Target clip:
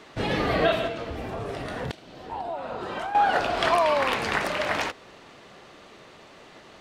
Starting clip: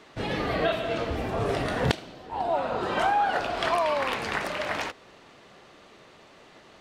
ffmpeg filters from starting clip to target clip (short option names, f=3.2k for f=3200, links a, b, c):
-filter_complex "[0:a]asettb=1/sr,asplit=3[a][b][c];[a]atrim=end=0.874[d];[b]atrim=start=0.87:end=3.15,asetpts=PTS-STARTPTS,afade=t=in:d=0.004:c=qsin,afade=t=out:st=2.276:d=0.004:c=qsin,acompressor=threshold=-35dB:ratio=4[e];[c]atrim=start=3.146[f];[d][e]acrossfade=d=0.004:c1=hsin:c2=qsin[g];[g][f]acrossfade=d=0.004:c1=qsin:c2=hsin,volume=3.5dB"